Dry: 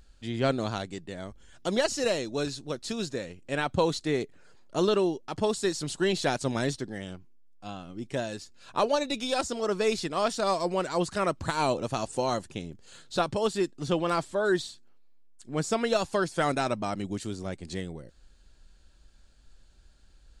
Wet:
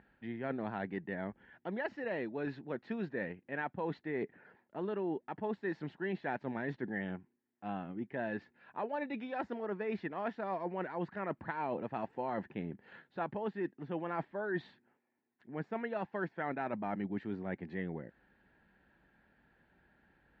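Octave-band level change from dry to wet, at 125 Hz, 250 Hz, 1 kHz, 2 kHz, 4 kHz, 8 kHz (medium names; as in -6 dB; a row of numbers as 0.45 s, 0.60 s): -9.5 dB, -7.5 dB, -9.0 dB, -6.5 dB, -24.5 dB, under -40 dB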